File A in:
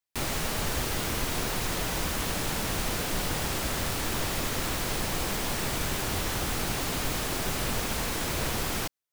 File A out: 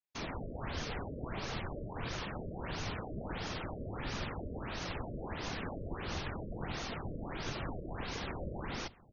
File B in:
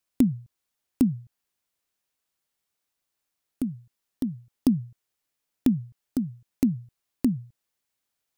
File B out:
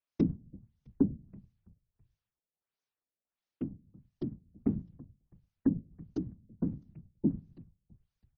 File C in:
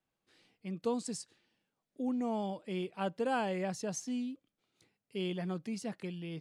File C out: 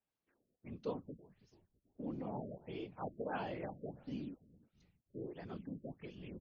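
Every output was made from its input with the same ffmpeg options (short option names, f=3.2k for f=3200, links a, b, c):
-filter_complex "[0:a]bandreject=f=60:t=h:w=6,bandreject=f=120:t=h:w=6,bandreject=f=180:t=h:w=6,asplit=4[a][b][c][d];[b]adelay=329,afreqshift=-64,volume=-21dB[e];[c]adelay=658,afreqshift=-128,volume=-29dB[f];[d]adelay=987,afreqshift=-192,volume=-36.9dB[g];[a][e][f][g]amix=inputs=4:normalize=0,afftfilt=real='hypot(re,im)*cos(2*PI*random(0))':imag='hypot(re,im)*sin(2*PI*random(1))':win_size=512:overlap=0.75,afftfilt=real='re*lt(b*sr/1024,630*pow(6900/630,0.5+0.5*sin(2*PI*1.5*pts/sr)))':imag='im*lt(b*sr/1024,630*pow(6900/630,0.5+0.5*sin(2*PI*1.5*pts/sr)))':win_size=1024:overlap=0.75,volume=-2dB"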